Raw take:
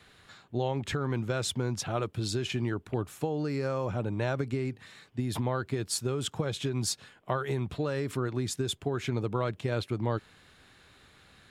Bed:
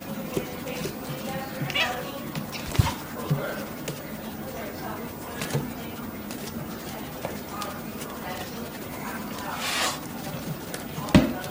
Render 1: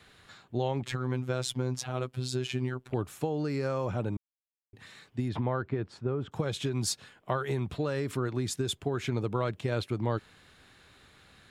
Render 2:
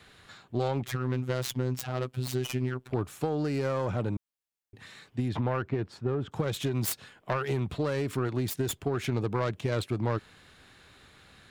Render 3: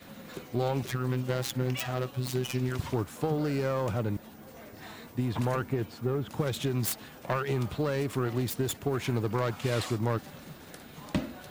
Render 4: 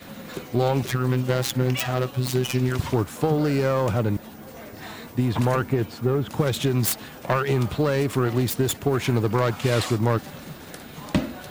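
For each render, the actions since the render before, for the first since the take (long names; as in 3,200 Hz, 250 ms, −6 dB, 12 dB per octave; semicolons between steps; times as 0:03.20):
0:00.83–0:02.91: phases set to zero 127 Hz; 0:04.17–0:04.73: silence; 0:05.28–0:06.31: low-pass filter 2,800 Hz → 1,200 Hz
phase distortion by the signal itself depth 0.24 ms; in parallel at −11 dB: hard clipping −28.5 dBFS, distortion −9 dB
mix in bed −13.5 dB
level +7.5 dB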